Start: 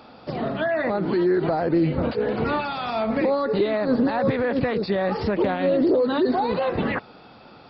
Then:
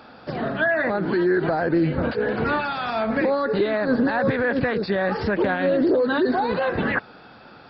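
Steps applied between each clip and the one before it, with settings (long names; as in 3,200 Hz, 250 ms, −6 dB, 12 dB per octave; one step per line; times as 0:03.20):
parametric band 1,600 Hz +10 dB 0.34 octaves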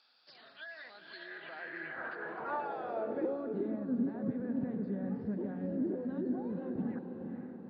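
feedback delay with all-pass diffusion 480 ms, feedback 55%, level −5.5 dB
band-pass filter sweep 4,600 Hz → 210 Hz, 0:01.02–0:03.83
level −8.5 dB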